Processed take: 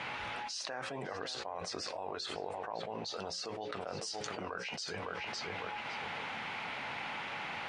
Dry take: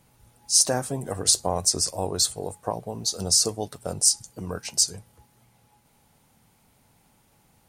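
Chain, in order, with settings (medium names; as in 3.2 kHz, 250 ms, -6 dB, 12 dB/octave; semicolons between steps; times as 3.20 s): low-pass 2.5 kHz 24 dB/octave; differentiator; hum notches 60/120/180/240/300/360/420/480/540 Hz; filtered feedback delay 557 ms, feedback 24%, low-pass 1.8 kHz, level -14.5 dB; level flattener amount 100%; trim +3 dB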